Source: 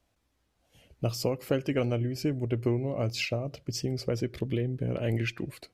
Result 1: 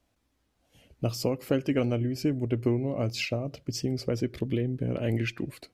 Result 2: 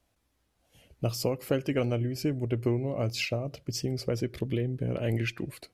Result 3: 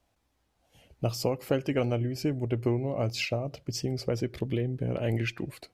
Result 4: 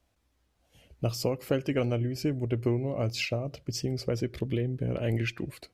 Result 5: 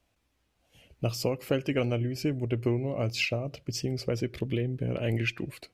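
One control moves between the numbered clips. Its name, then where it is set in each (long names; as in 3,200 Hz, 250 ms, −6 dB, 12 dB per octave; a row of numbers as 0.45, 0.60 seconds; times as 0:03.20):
parametric band, centre frequency: 260, 11,000, 810, 62, 2,600 Hertz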